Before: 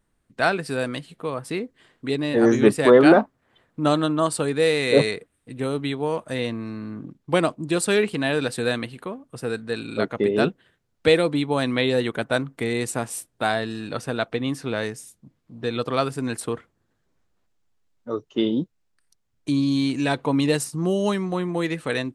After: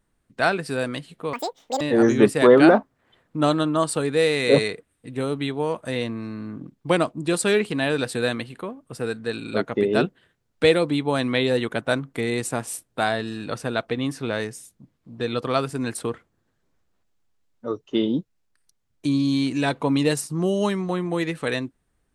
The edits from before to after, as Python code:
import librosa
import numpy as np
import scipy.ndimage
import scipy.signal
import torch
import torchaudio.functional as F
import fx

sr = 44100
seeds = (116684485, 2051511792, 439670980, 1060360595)

y = fx.edit(x, sr, fx.speed_span(start_s=1.33, length_s=0.91, speed=1.9), tone=tone)